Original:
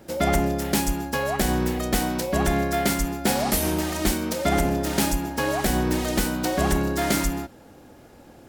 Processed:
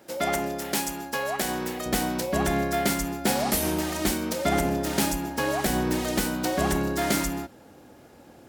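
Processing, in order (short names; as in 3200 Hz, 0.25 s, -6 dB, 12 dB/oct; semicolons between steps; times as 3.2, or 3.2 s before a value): HPF 450 Hz 6 dB/oct, from 1.86 s 93 Hz; gain -1.5 dB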